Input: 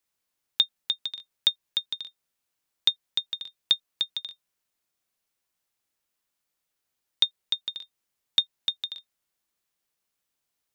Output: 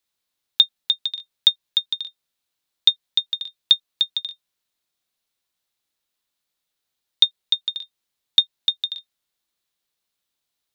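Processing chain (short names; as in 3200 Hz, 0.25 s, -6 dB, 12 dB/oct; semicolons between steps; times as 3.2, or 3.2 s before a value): bell 3800 Hz +7.5 dB 0.57 oct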